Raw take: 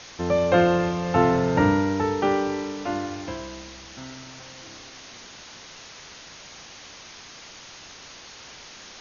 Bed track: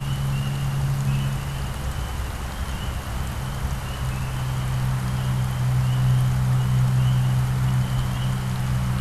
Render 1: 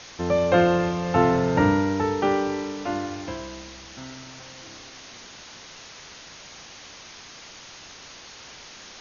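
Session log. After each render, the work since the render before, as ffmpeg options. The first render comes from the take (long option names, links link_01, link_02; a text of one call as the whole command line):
ffmpeg -i in.wav -af anull out.wav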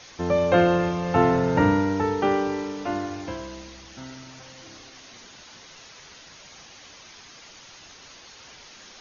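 ffmpeg -i in.wav -af "afftdn=noise_reduction=6:noise_floor=-45" out.wav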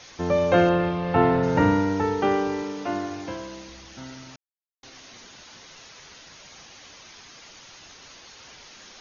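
ffmpeg -i in.wav -filter_complex "[0:a]asettb=1/sr,asplit=3[link_01][link_02][link_03];[link_01]atrim=end=0.694[link_04];[link_02]atrim=start=0.69:end=1.43,asetpts=PTS-STARTPTS,afade=type=in:duration=0.004:curve=qsin,afade=type=out:start_time=0.736:duration=0.004:curve=qsin,lowpass=frequency=4200:width=0.5412,lowpass=frequency=4200:width=1.3066[link_05];[link_03]atrim=start=1.426[link_06];[link_04][link_05]acrossfade=duration=0.004:curve1=hsin:curve2=qsin[link_07];[link_07][link_06]acrossfade=duration=0.004:curve1=qsin:curve2=hsin,asettb=1/sr,asplit=3[link_08][link_09][link_10];[link_08]atrim=end=2.624[link_11];[link_09]atrim=start=2.62:end=3.69,asetpts=PTS-STARTPTS,afade=type=in:duration=0.004:curve=qsin,afade=type=out:start_time=1.066:duration=0.004:curve=qsin,highpass=100[link_12];[link_10]atrim=start=3.686[link_13];[link_11][link_12]acrossfade=duration=0.004:curve1=hsin:curve2=qsin[link_14];[link_14][link_13]acrossfade=duration=0.004:curve1=qsin:curve2=hsin,asplit=3[link_15][link_16][link_17];[link_15]atrim=end=4.36,asetpts=PTS-STARTPTS,afade=type=out:start_time=4.356:duration=0.004:curve=hsin[link_18];[link_16]atrim=start=4.36:end=4.83,asetpts=PTS-STARTPTS,volume=0[link_19];[link_17]atrim=start=4.83,asetpts=PTS-STARTPTS,afade=type=in:duration=0.004:curve=hsin[link_20];[link_18][link_19][link_20]concat=n=3:v=0:a=1" out.wav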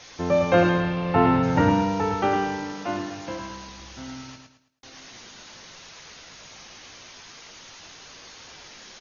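ffmpeg -i in.wav -filter_complex "[0:a]asplit=2[link_01][link_02];[link_02]adelay=19,volume=-10dB[link_03];[link_01][link_03]amix=inputs=2:normalize=0,asplit=2[link_04][link_05];[link_05]aecho=0:1:108|216|324|432:0.562|0.18|0.0576|0.0184[link_06];[link_04][link_06]amix=inputs=2:normalize=0" out.wav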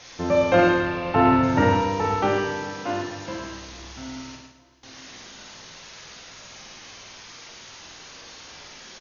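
ffmpeg -i in.wav -filter_complex "[0:a]asplit=2[link_01][link_02];[link_02]adelay=49,volume=-3dB[link_03];[link_01][link_03]amix=inputs=2:normalize=0,aecho=1:1:433|866|1299|1732:0.075|0.042|0.0235|0.0132" out.wav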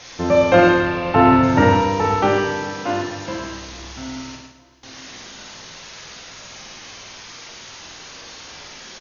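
ffmpeg -i in.wav -af "volume=5dB,alimiter=limit=-2dB:level=0:latency=1" out.wav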